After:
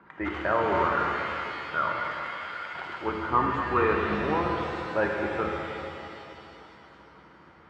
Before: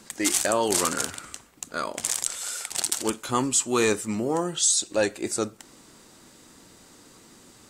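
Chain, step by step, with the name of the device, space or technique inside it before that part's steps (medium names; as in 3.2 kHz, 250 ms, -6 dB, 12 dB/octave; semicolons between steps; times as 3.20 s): sub-octave bass pedal (octave divider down 2 oct, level -1 dB; cabinet simulation 83–2100 Hz, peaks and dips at 110 Hz -5 dB, 240 Hz -7 dB, 970 Hz +7 dB, 1.4 kHz +8 dB); pitch-shifted reverb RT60 2.9 s, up +7 st, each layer -8 dB, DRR -0.5 dB; trim -4 dB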